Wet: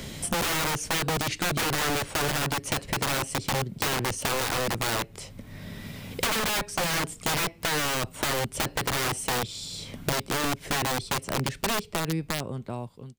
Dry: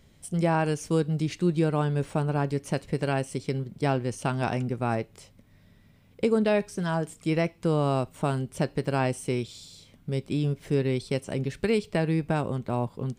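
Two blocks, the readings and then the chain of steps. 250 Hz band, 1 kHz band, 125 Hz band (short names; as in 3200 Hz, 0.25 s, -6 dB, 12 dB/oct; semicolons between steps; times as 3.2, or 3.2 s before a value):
-6.0 dB, +2.5 dB, -6.0 dB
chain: ending faded out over 2.78 s; wrapped overs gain 26 dB; three-band squash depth 70%; gain +4.5 dB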